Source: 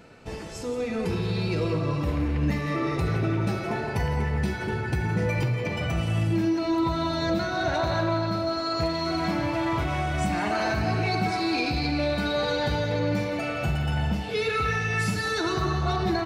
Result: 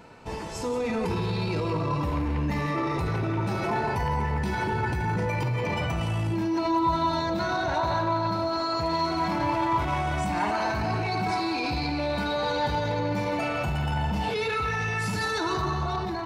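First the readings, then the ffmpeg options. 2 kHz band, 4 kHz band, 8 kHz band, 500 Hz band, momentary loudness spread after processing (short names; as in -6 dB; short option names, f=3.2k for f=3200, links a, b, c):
-1.5 dB, -2.0 dB, -1.5 dB, -1.5 dB, 2 LU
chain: -af "alimiter=level_in=1.5dB:limit=-24dB:level=0:latency=1:release=17,volume=-1.5dB,equalizer=f=950:t=o:w=0.35:g=11,dynaudnorm=f=240:g=5:m=4dB"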